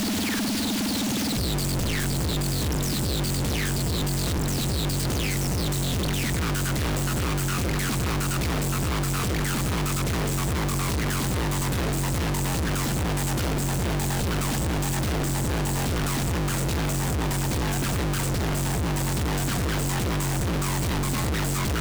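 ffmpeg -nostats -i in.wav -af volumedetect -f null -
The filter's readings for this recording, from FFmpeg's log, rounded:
mean_volume: -25.1 dB
max_volume: -23.1 dB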